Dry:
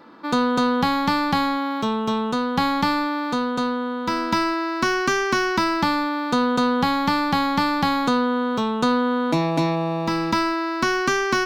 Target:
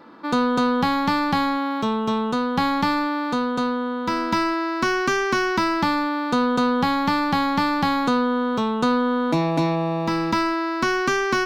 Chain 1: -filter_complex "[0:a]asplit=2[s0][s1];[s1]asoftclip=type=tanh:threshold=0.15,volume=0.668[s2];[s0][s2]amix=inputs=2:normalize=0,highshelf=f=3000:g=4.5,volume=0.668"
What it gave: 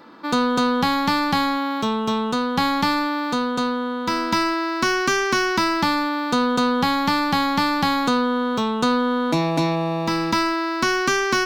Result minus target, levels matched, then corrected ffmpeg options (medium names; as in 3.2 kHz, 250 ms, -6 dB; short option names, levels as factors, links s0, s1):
8 kHz band +5.5 dB
-filter_complex "[0:a]asplit=2[s0][s1];[s1]asoftclip=type=tanh:threshold=0.15,volume=0.668[s2];[s0][s2]amix=inputs=2:normalize=0,highshelf=f=3000:g=-3,volume=0.668"